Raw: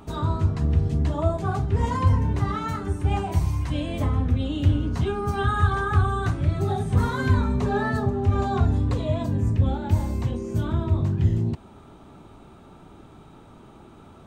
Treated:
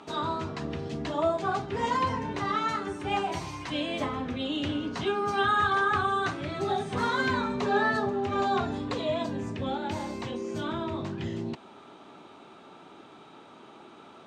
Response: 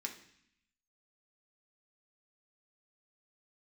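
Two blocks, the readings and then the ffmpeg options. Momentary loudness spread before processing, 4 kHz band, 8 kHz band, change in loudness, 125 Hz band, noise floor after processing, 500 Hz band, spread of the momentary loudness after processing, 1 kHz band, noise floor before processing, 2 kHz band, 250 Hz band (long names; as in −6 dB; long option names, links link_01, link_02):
4 LU, +5.0 dB, can't be measured, −5.5 dB, −17.0 dB, −51 dBFS, −0.5 dB, 9 LU, +1.5 dB, −48 dBFS, +3.0 dB, −4.5 dB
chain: -af "highpass=290,lowpass=4300,highshelf=frequency=2400:gain=9.5"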